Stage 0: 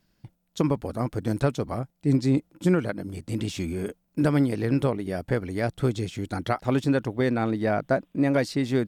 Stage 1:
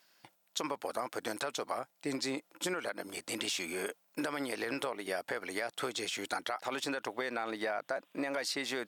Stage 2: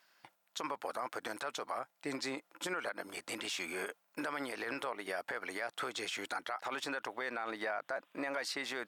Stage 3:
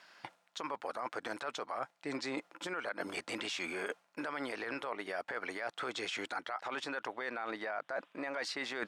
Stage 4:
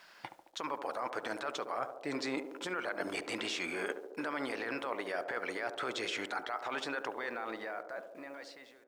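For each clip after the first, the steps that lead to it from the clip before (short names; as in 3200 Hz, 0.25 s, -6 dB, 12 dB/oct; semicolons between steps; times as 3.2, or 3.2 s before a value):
HPF 760 Hz 12 dB/oct; limiter -25 dBFS, peak gain reduction 11.5 dB; compressor 4:1, threshold -40 dBFS, peak gain reduction 8.5 dB; gain +7.5 dB
bell 1300 Hz +8 dB 2.2 oct; limiter -21 dBFS, peak gain reduction 6.5 dB; gain -5.5 dB
air absorption 62 m; reverse; compressor 6:1, threshold -47 dBFS, peak gain reduction 13.5 dB; reverse; gain +11 dB
ending faded out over 1.91 s; requantised 12-bit, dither none; narrowing echo 72 ms, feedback 78%, band-pass 460 Hz, level -7.5 dB; gain +1.5 dB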